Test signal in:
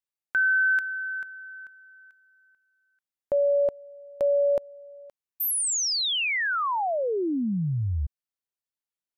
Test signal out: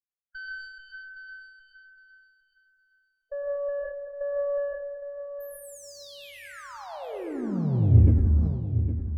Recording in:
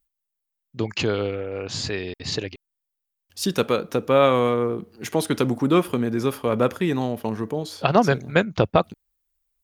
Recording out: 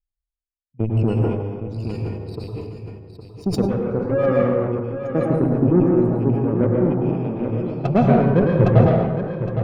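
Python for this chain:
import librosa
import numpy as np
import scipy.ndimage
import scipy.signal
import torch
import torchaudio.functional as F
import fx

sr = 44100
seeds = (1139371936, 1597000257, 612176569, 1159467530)

y = fx.rattle_buzz(x, sr, strikes_db=-29.0, level_db=-16.0)
y = fx.spec_gate(y, sr, threshold_db=-10, keep='strong')
y = fx.low_shelf(y, sr, hz=120.0, db=12.0)
y = fx.cheby_harmonics(y, sr, harmonics=(4, 7), levels_db=(-30, -18), full_scale_db=-4.5)
y = fx.tilt_shelf(y, sr, db=7.5, hz=790.0)
y = 10.0 ** (-3.5 / 20.0) * np.tanh(y / 10.0 ** (-3.5 / 20.0))
y = fx.echo_feedback(y, sr, ms=812, feedback_pct=24, wet_db=-9.5)
y = fx.rev_plate(y, sr, seeds[0], rt60_s=1.3, hf_ratio=0.65, predelay_ms=95, drr_db=-2.5)
y = fx.sustainer(y, sr, db_per_s=53.0)
y = y * librosa.db_to_amplitude(-3.0)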